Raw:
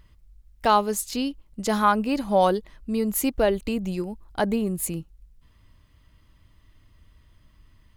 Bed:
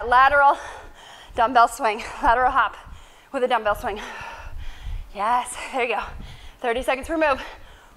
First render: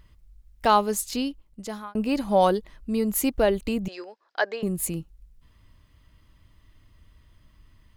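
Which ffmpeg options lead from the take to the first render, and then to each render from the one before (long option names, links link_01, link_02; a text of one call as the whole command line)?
ffmpeg -i in.wav -filter_complex "[0:a]asettb=1/sr,asplit=3[link_01][link_02][link_03];[link_01]atrim=end=3.884[link_04];[link_02]atrim=start=3.88:end=4.63,asetpts=PTS-STARTPTS,afade=type=in:duration=0.004:curve=qsin,afade=type=out:start_time=0.746:duration=0.004:curve=qsin,highpass=frequency=460:width=0.5412,highpass=frequency=460:width=1.3066,equalizer=frequency=890:width_type=q:width=4:gain=-4,equalizer=frequency=1700:width_type=q:width=4:gain=8,equalizer=frequency=5000:width_type=q:width=4:gain=6,lowpass=frequency=5600:width=0.5412,lowpass=frequency=5600:width=1.3066[link_05];[link_03]atrim=start=4.626[link_06];[link_04][link_05]acrossfade=duration=0.004:curve1=hsin:curve2=qsin[link_07];[link_07][link_06]acrossfade=duration=0.004:curve1=qsin:curve2=hsin,asplit=2[link_08][link_09];[link_08]atrim=end=1.95,asetpts=PTS-STARTPTS,afade=type=out:start_time=1.15:duration=0.8[link_10];[link_09]atrim=start=1.95,asetpts=PTS-STARTPTS,afade=type=in:duration=0.004:curve=hsin[link_11];[link_10][link_11]concat=n=2:v=0:a=1" out.wav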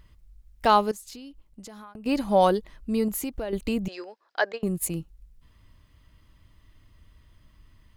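ffmpeg -i in.wav -filter_complex "[0:a]asettb=1/sr,asplit=3[link_01][link_02][link_03];[link_01]atrim=end=0.914[link_04];[link_02]atrim=start=0.91:end=2.06,asetpts=PTS-STARTPTS,afade=type=in:duration=0.004:curve=qsin,afade=type=out:start_time=1.146:duration=0.004:curve=qsin,acompressor=threshold=-39dB:ratio=12:attack=3.2:release=140:knee=1:detection=peak[link_05];[link_03]atrim=start=2.056[link_06];[link_04][link_05]acrossfade=duration=0.004:curve1=hsin:curve2=qsin[link_07];[link_07][link_06]acrossfade=duration=0.004:curve1=qsin:curve2=hsin,asettb=1/sr,asplit=3[link_08][link_09][link_10];[link_08]atrim=end=3.084[link_11];[link_09]atrim=start=3.08:end=3.53,asetpts=PTS-STARTPTS,afade=type=in:duration=0.004:curve=qsin,afade=type=out:start_time=0.446:duration=0.004:curve=qsin,acompressor=threshold=-27dB:ratio=8:attack=3.2:release=140:knee=1:detection=peak[link_12];[link_10]atrim=start=3.526[link_13];[link_11][link_12]acrossfade=duration=0.004:curve1=hsin:curve2=qsin[link_14];[link_14][link_13]acrossfade=duration=0.004:curve1=qsin:curve2=hsin,asettb=1/sr,asplit=3[link_15][link_16][link_17];[link_15]atrim=end=4.524[link_18];[link_16]atrim=start=4.52:end=4.93,asetpts=PTS-STARTPTS,afade=type=in:duration=0.004:curve=qsin,afade=type=out:start_time=0.406:duration=0.004:curve=qsin,agate=range=-16dB:threshold=-32dB:ratio=16:release=100:detection=peak[link_19];[link_17]atrim=start=4.926[link_20];[link_18][link_19]acrossfade=duration=0.004:curve1=hsin:curve2=qsin[link_21];[link_21][link_20]acrossfade=duration=0.004:curve1=qsin:curve2=hsin" out.wav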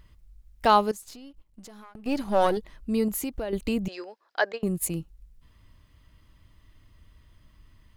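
ffmpeg -i in.wav -filter_complex "[0:a]asettb=1/sr,asplit=3[link_01][link_02][link_03];[link_01]atrim=end=1.024[link_04];[link_02]atrim=start=1.02:end=2.57,asetpts=PTS-STARTPTS,afade=type=in:duration=0.004:curve=qsin,afade=type=out:start_time=1.546:duration=0.004:curve=qsin,aeval=exprs='if(lt(val(0),0),0.447*val(0),val(0))':channel_layout=same[link_05];[link_03]atrim=start=2.566[link_06];[link_04][link_05]acrossfade=duration=0.004:curve1=hsin:curve2=qsin[link_07];[link_07][link_06]acrossfade=duration=0.004:curve1=qsin:curve2=hsin" out.wav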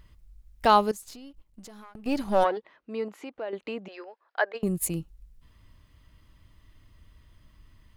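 ffmpeg -i in.wav -filter_complex "[0:a]asplit=3[link_01][link_02][link_03];[link_01]afade=type=out:start_time=2.43:duration=0.02[link_04];[link_02]highpass=450,lowpass=2500,afade=type=in:start_time=2.43:duration=0.02,afade=type=out:start_time=4.54:duration=0.02[link_05];[link_03]afade=type=in:start_time=4.54:duration=0.02[link_06];[link_04][link_05][link_06]amix=inputs=3:normalize=0" out.wav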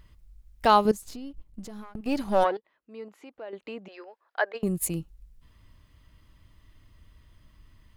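ffmpeg -i in.wav -filter_complex "[0:a]asettb=1/sr,asplit=3[link_01][link_02][link_03];[link_01]atrim=end=0.854[link_04];[link_02]atrim=start=0.85:end=2.01,asetpts=PTS-STARTPTS,afade=type=in:duration=0.004:curve=qsin,afade=type=out:start_time=1.156:duration=0.004:curve=qsin,lowshelf=frequency=430:gain=9.5[link_05];[link_03]atrim=start=2.006[link_06];[link_04][link_05]acrossfade=duration=0.004:curve1=hsin:curve2=qsin[link_07];[link_07][link_06]acrossfade=duration=0.004:curve1=qsin:curve2=hsin,asplit=2[link_08][link_09];[link_08]atrim=end=2.57,asetpts=PTS-STARTPTS,afade=type=out:start_time=2.566:duration=0.004:curve=hsin:silence=0.16788[link_10];[link_09]atrim=start=2.57,asetpts=PTS-STARTPTS,afade=type=in:duration=2.01:silence=0.16788[link_11];[link_10][link_11]concat=n=2:v=0:a=1" out.wav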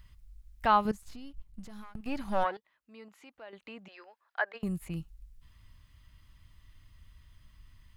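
ffmpeg -i in.wav -filter_complex "[0:a]acrossover=split=2700[link_01][link_02];[link_02]acompressor=threshold=-55dB:ratio=4:attack=1:release=60[link_03];[link_01][link_03]amix=inputs=2:normalize=0,equalizer=frequency=410:width=0.73:gain=-12" out.wav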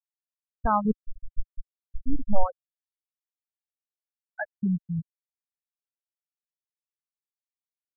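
ffmpeg -i in.wav -af "afftfilt=real='re*gte(hypot(re,im),0.126)':imag='im*gte(hypot(re,im),0.126)':win_size=1024:overlap=0.75,aemphasis=mode=reproduction:type=riaa" out.wav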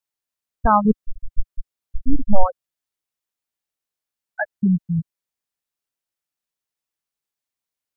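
ffmpeg -i in.wav -af "volume=8dB,alimiter=limit=-1dB:level=0:latency=1" out.wav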